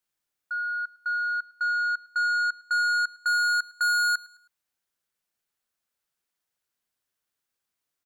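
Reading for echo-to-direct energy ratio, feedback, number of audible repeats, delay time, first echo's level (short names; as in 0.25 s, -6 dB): -21.0 dB, 38%, 2, 0.106 s, -21.5 dB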